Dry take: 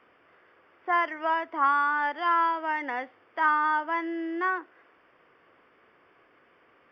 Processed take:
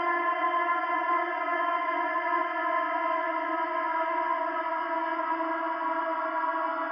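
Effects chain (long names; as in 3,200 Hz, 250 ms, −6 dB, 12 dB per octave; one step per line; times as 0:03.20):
convolution reverb RT60 0.95 s, pre-delay 3 ms, DRR 1 dB
extreme stretch with random phases 17×, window 1.00 s, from 0:01.02
level −5 dB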